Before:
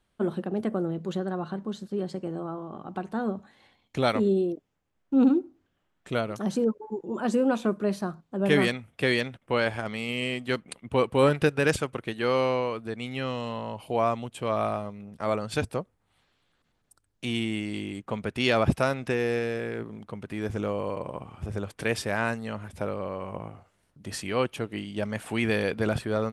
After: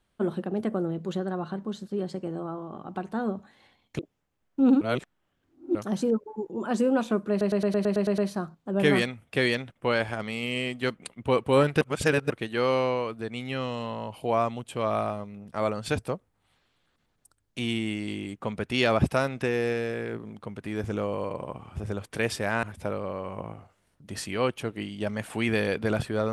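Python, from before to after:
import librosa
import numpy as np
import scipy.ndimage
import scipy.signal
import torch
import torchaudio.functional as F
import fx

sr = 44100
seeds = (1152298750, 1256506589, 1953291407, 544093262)

y = fx.edit(x, sr, fx.cut(start_s=3.99, length_s=0.54),
    fx.reverse_span(start_s=5.35, length_s=0.94),
    fx.stutter(start_s=7.84, slice_s=0.11, count=9),
    fx.reverse_span(start_s=11.47, length_s=0.49),
    fx.cut(start_s=22.29, length_s=0.3), tone=tone)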